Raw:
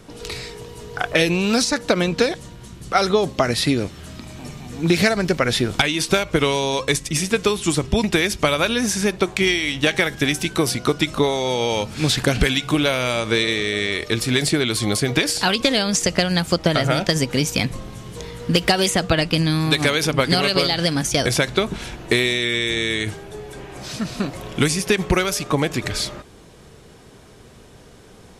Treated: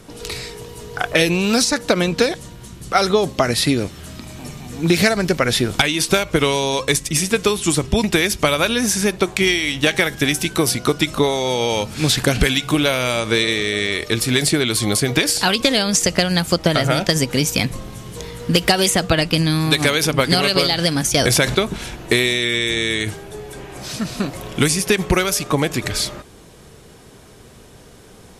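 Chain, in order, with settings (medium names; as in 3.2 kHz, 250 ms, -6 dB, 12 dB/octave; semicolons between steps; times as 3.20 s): treble shelf 11 kHz +10.5 dB; resampled via 32 kHz; 21.15–21.55 s: level flattener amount 50%; trim +1.5 dB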